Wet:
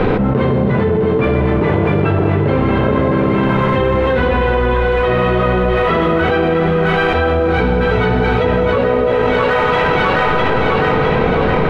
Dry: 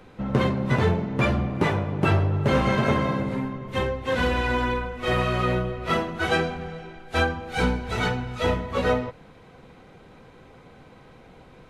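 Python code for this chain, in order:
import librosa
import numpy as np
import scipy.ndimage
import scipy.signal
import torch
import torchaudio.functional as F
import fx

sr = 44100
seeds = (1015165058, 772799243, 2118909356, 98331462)

p1 = fx.air_absorb(x, sr, metres=340.0)
p2 = p1 + fx.echo_split(p1, sr, split_hz=770.0, low_ms=164, high_ms=658, feedback_pct=52, wet_db=-6.0, dry=0)
p3 = fx.rev_schroeder(p2, sr, rt60_s=1.4, comb_ms=27, drr_db=5.0)
p4 = np.sign(p3) * np.maximum(np.abs(p3) - 10.0 ** (-43.0 / 20.0), 0.0)
p5 = p3 + (p4 * 10.0 ** (-11.5 / 20.0))
p6 = fx.peak_eq(p5, sr, hz=440.0, db=7.0, octaves=0.26)
p7 = fx.env_flatten(p6, sr, amount_pct=100)
y = p7 * 10.0 ** (-2.0 / 20.0)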